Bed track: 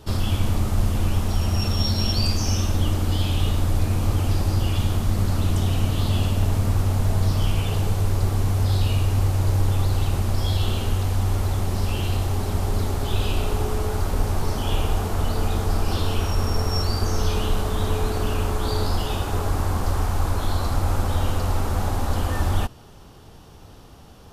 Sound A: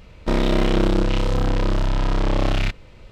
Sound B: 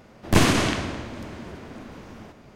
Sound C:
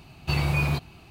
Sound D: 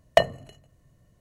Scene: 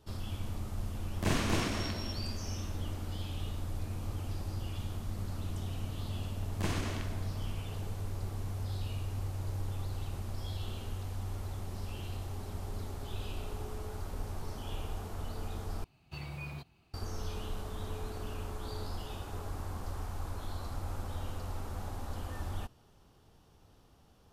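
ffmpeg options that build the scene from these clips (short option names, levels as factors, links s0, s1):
-filter_complex "[2:a]asplit=2[s0][s1];[0:a]volume=0.15[s2];[s0]aecho=1:1:43.73|271.1:0.891|1[s3];[s2]asplit=2[s4][s5];[s4]atrim=end=15.844[s6];[3:a]atrim=end=1.1,asetpts=PTS-STARTPTS,volume=0.126[s7];[s5]atrim=start=16.936[s8];[s3]atrim=end=2.55,asetpts=PTS-STARTPTS,volume=0.158,afade=t=in:d=0.004:c=hsin,afade=t=out:st=2.546:d=0.004:c=hsin,adelay=900[s9];[s1]atrim=end=2.55,asetpts=PTS-STARTPTS,volume=0.126,afade=t=in:d=0.004:c=hsin,afade=t=out:st=2.546:d=0.004:c=hsin,adelay=6280[s10];[s6][s7]acrossfade=d=0.004:c1=hsin:c2=hsin[s11];[s11][s8]acrossfade=d=0.004:c1=hsin:c2=hsin[s12];[s12][s9][s10]amix=inputs=3:normalize=0"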